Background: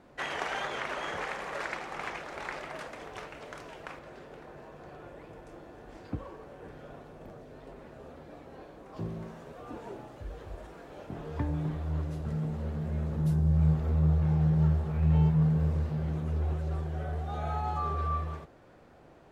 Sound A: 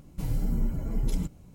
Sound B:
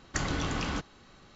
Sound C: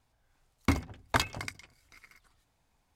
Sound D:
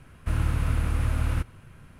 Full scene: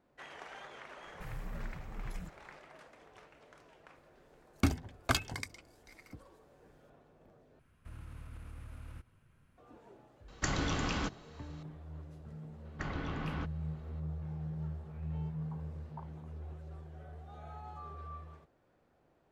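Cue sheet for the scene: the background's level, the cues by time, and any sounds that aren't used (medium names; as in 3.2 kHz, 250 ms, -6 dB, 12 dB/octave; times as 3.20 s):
background -15 dB
1.02 s: add A -14.5 dB + peaking EQ 260 Hz -11.5 dB 0.23 oct
3.95 s: add C -1 dB + Shepard-style phaser rising 1.9 Hz
7.59 s: replace with D -17.5 dB + peak limiter -22.5 dBFS
10.28 s: add B -2 dB
12.65 s: add B -7 dB + low-pass 2.5 kHz
14.83 s: add C -15.5 dB + Butterworth band-pass 870 Hz, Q 3.3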